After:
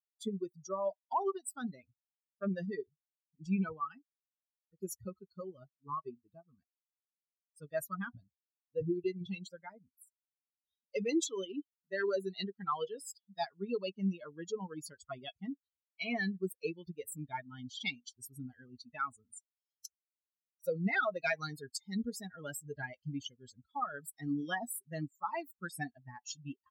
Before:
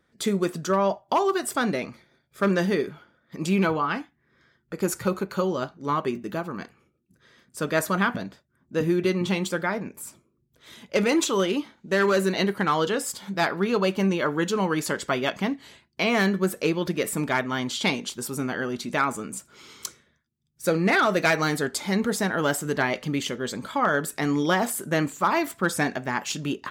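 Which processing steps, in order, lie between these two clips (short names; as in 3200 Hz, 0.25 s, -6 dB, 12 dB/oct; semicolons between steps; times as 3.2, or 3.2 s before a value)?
per-bin expansion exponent 3; gain -5.5 dB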